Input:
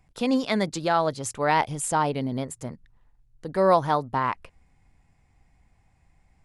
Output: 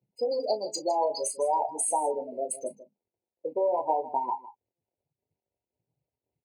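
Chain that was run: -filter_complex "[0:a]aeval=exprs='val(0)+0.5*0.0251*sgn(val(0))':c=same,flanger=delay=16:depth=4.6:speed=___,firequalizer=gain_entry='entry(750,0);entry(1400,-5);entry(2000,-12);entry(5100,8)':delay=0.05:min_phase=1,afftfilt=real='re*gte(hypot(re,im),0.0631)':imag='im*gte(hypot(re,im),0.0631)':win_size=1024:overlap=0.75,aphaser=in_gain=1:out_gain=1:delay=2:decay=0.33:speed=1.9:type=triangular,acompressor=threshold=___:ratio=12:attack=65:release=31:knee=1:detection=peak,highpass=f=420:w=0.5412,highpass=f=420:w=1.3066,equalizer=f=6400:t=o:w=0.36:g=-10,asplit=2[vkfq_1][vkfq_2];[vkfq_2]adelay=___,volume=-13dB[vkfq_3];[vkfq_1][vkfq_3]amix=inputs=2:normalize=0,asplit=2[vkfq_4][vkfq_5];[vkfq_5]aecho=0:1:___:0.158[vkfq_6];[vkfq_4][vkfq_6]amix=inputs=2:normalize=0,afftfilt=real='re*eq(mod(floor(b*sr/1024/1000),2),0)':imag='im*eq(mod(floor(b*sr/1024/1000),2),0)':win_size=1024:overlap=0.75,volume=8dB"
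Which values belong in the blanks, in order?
0.49, -37dB, 35, 157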